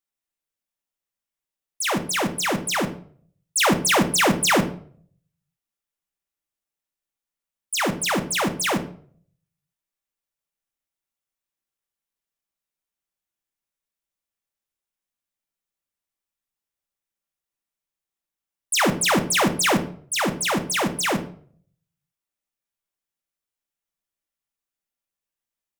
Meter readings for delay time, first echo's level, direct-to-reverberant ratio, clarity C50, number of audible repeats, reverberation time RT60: none, none, 6.5 dB, 13.0 dB, none, 0.50 s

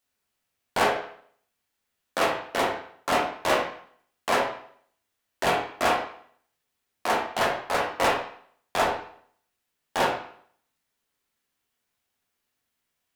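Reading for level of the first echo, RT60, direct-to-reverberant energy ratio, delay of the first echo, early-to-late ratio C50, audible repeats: none, 0.60 s, -3.0 dB, none, 5.0 dB, none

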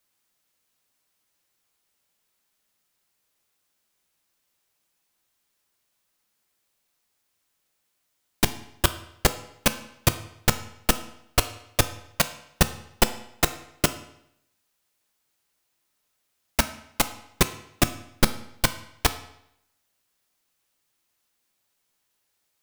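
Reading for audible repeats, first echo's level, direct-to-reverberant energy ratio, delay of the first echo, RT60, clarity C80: none, none, 9.5 dB, none, 0.75 s, 16.0 dB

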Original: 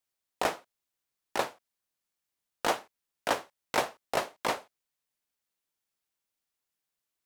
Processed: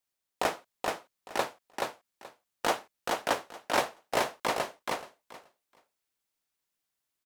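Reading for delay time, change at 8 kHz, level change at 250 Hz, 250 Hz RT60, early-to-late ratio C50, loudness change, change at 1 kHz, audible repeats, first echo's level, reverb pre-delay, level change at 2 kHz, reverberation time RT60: 0.428 s, +2.0 dB, +2.0 dB, none, none, 0.0 dB, +2.0 dB, 3, -3.0 dB, none, +2.0 dB, none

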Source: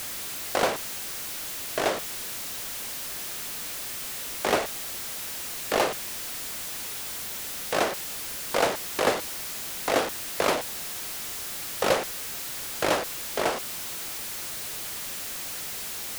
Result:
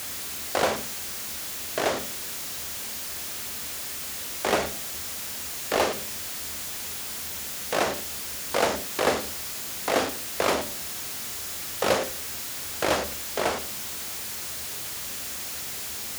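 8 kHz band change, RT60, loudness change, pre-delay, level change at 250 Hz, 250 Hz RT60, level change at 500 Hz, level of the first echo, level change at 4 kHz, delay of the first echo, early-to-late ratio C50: +1.0 dB, 0.45 s, +0.5 dB, 32 ms, +1.0 dB, 0.45 s, +0.5 dB, none, +1.0 dB, none, 13.5 dB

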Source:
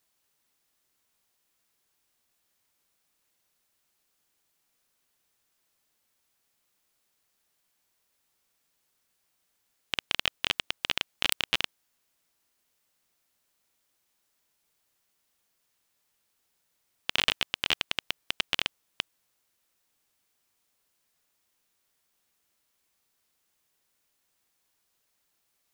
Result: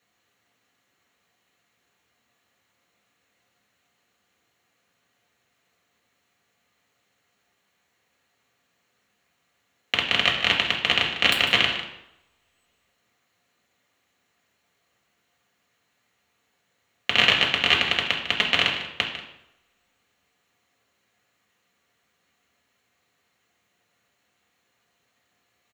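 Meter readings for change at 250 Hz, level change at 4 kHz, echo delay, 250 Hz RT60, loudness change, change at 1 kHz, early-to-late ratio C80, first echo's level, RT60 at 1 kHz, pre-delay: +11.5 dB, +8.5 dB, 0.15 s, 0.80 s, +9.0 dB, +10.5 dB, 7.5 dB, -12.0 dB, 0.85 s, 3 ms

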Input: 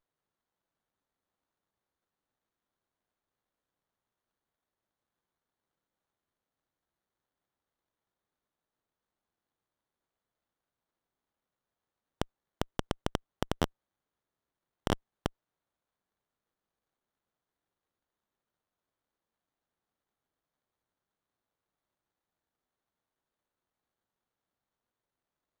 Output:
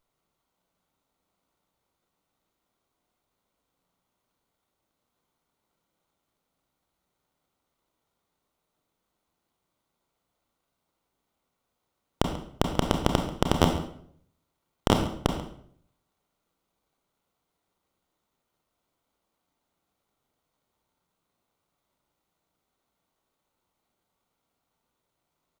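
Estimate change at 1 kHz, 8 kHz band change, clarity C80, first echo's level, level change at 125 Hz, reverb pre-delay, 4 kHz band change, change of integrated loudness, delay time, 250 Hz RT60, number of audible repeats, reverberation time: +9.5 dB, +9.5 dB, 9.0 dB, -16.0 dB, +10.0 dB, 27 ms, +9.5 dB, +9.5 dB, 0.138 s, 0.70 s, 1, 0.65 s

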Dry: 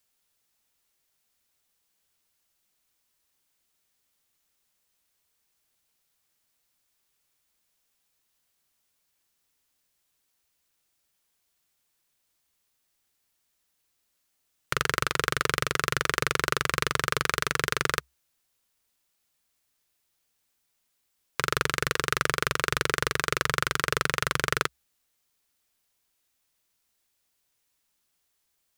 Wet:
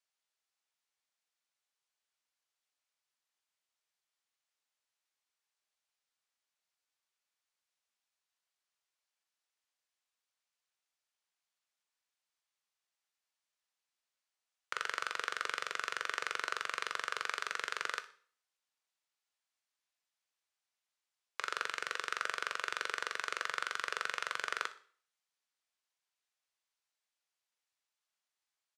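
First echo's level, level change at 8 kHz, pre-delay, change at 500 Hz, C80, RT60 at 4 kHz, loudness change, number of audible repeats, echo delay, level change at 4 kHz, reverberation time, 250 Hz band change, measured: -17.5 dB, -14.0 dB, 6 ms, -16.0 dB, 20.0 dB, 0.45 s, -10.5 dB, 1, 61 ms, -11.0 dB, 0.50 s, -23.0 dB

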